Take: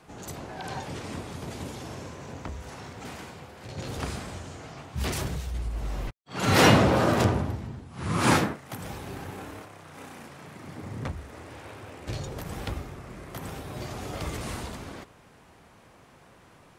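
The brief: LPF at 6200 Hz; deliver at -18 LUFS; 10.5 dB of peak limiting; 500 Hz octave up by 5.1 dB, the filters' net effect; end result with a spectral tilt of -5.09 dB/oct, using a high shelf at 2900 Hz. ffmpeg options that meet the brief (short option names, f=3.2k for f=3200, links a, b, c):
-af "lowpass=6.2k,equalizer=f=500:t=o:g=6,highshelf=f=2.9k:g=6,volume=12.5dB,alimiter=limit=-0.5dB:level=0:latency=1"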